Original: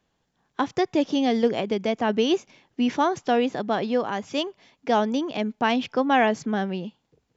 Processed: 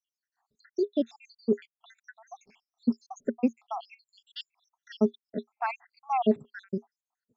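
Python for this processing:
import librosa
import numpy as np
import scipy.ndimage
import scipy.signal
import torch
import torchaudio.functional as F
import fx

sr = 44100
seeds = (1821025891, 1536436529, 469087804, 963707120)

y = fx.spec_dropout(x, sr, seeds[0], share_pct=85)
y = fx.small_body(y, sr, hz=(230.0, 410.0), ring_ms=90, db=16)
y = F.gain(torch.from_numpy(y), -6.0).numpy()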